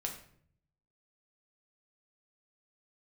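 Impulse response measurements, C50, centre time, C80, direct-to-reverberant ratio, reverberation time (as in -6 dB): 8.0 dB, 20 ms, 11.5 dB, 1.0 dB, 0.60 s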